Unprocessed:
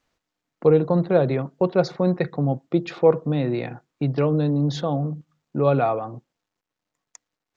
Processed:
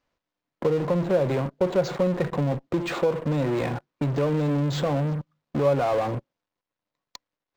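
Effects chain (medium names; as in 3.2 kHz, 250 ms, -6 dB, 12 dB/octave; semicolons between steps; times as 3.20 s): in parallel at -11.5 dB: fuzz box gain 42 dB, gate -50 dBFS; on the sum: compression 3:1, threshold -18 dBFS, peak gain reduction 7 dB; small resonant body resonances 560/1000 Hz, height 6 dB; decimation joined by straight lines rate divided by 4×; trim -4 dB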